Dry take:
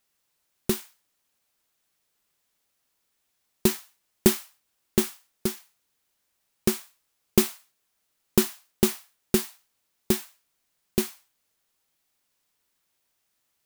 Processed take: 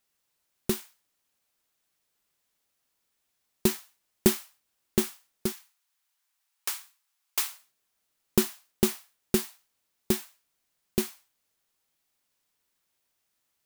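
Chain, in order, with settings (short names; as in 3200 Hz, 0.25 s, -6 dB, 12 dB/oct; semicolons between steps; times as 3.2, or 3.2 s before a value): 5.52–7.52 HPF 800 Hz 24 dB/oct; gain -2.5 dB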